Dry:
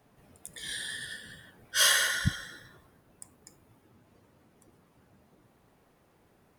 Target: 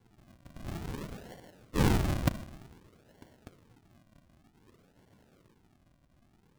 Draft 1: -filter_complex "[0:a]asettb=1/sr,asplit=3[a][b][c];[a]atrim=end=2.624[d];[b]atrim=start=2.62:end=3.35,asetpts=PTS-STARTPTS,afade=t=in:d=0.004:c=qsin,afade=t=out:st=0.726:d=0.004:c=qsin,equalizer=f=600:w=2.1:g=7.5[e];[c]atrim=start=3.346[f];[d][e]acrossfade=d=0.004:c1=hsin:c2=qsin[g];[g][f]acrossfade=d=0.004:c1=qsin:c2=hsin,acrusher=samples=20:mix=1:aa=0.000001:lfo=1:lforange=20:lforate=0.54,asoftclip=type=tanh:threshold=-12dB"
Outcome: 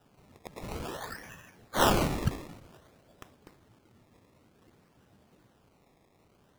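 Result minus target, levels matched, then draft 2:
decimation with a swept rate: distortion -5 dB
-filter_complex "[0:a]asettb=1/sr,asplit=3[a][b][c];[a]atrim=end=2.624[d];[b]atrim=start=2.62:end=3.35,asetpts=PTS-STARTPTS,afade=t=in:d=0.004:c=qsin,afade=t=out:st=0.726:d=0.004:c=qsin,equalizer=f=600:w=2.1:g=7.5[e];[c]atrim=start=3.346[f];[d][e]acrossfade=d=0.004:c1=hsin:c2=qsin[g];[g][f]acrossfade=d=0.004:c1=qsin:c2=hsin,acrusher=samples=69:mix=1:aa=0.000001:lfo=1:lforange=69:lforate=0.54,asoftclip=type=tanh:threshold=-12dB"

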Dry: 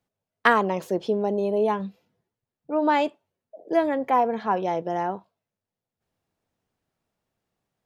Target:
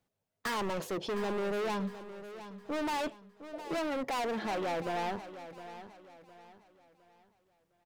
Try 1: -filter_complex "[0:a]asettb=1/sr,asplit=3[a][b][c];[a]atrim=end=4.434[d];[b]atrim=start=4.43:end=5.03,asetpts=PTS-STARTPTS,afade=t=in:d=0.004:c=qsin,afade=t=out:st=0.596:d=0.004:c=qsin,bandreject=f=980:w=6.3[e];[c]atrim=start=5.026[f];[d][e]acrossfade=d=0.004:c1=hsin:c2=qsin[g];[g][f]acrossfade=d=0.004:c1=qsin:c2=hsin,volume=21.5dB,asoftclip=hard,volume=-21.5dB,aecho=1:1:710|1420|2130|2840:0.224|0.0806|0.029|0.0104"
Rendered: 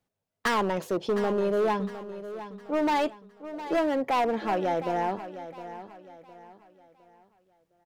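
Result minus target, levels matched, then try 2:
overloaded stage: distortion -5 dB
-filter_complex "[0:a]asettb=1/sr,asplit=3[a][b][c];[a]atrim=end=4.434[d];[b]atrim=start=4.43:end=5.03,asetpts=PTS-STARTPTS,afade=t=in:d=0.004:c=qsin,afade=t=out:st=0.596:d=0.004:c=qsin,bandreject=f=980:w=6.3[e];[c]atrim=start=5.026[f];[d][e]acrossfade=d=0.004:c1=hsin:c2=qsin[g];[g][f]acrossfade=d=0.004:c1=qsin:c2=hsin,volume=32dB,asoftclip=hard,volume=-32dB,aecho=1:1:710|1420|2130|2840:0.224|0.0806|0.029|0.0104"

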